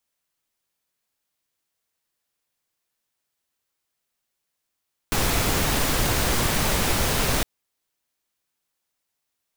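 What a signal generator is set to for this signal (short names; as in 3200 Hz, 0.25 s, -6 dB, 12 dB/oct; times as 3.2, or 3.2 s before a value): noise pink, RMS -22 dBFS 2.31 s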